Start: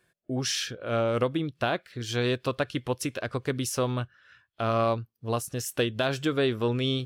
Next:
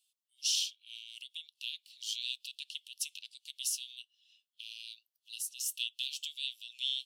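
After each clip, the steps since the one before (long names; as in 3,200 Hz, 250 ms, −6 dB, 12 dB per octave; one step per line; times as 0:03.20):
Chebyshev high-pass filter 2,800 Hz, order 6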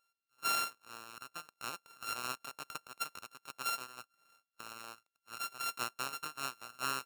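samples sorted by size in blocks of 32 samples
level −1.5 dB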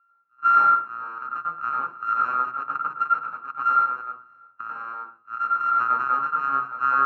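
low-pass with resonance 1,300 Hz, resonance Q 9.7
convolution reverb RT60 0.50 s, pre-delay 93 ms, DRR −2.5 dB
level +1 dB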